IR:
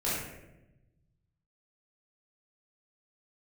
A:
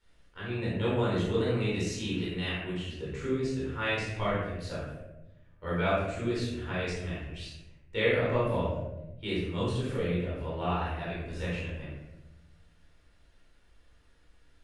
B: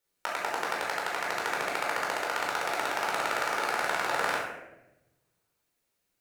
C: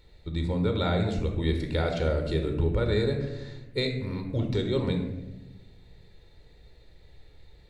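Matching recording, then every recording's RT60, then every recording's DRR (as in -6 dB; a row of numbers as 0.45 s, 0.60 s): A; 0.95 s, 0.95 s, 1.0 s; -9.0 dB, -5.0 dB, 3.5 dB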